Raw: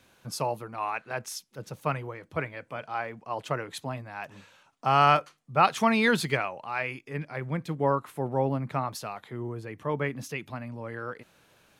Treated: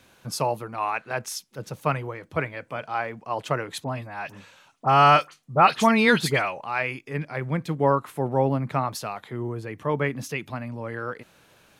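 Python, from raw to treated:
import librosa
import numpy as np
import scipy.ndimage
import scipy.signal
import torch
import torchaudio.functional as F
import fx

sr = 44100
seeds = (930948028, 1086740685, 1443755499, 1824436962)

y = fx.dispersion(x, sr, late='highs', ms=57.0, hz=2300.0, at=(3.84, 6.61))
y = F.gain(torch.from_numpy(y), 4.5).numpy()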